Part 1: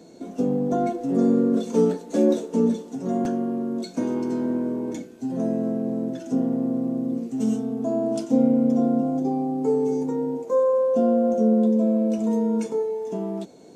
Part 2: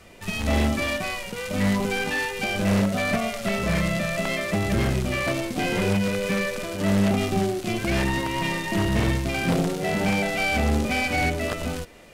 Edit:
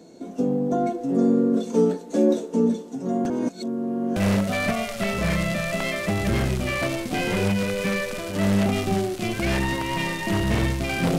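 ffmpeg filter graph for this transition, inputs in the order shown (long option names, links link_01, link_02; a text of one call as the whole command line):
ffmpeg -i cue0.wav -i cue1.wav -filter_complex "[0:a]apad=whole_dur=11.18,atrim=end=11.18,asplit=2[link_01][link_02];[link_01]atrim=end=3.302[link_03];[link_02]atrim=start=3.298:end=4.162,asetpts=PTS-STARTPTS,areverse[link_04];[1:a]atrim=start=2.608:end=9.63[link_05];[link_03][link_04]acrossfade=duration=0.004:curve1=hsin:curve2=hsin[link_06];[link_06][link_05]acrossfade=duration=0.004:curve1=hsin:curve2=hsin" out.wav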